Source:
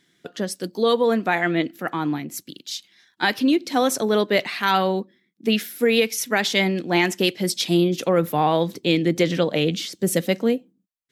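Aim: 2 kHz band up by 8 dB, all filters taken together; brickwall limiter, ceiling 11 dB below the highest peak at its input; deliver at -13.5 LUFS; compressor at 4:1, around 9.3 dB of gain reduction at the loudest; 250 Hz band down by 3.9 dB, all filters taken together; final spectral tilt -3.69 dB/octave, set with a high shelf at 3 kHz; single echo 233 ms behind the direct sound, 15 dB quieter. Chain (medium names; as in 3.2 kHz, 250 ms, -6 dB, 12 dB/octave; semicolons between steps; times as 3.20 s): peaking EQ 250 Hz -6 dB; peaking EQ 2 kHz +8.5 dB; treble shelf 3 kHz +3 dB; compression 4:1, threshold -21 dBFS; peak limiter -18 dBFS; delay 233 ms -15 dB; trim +15.5 dB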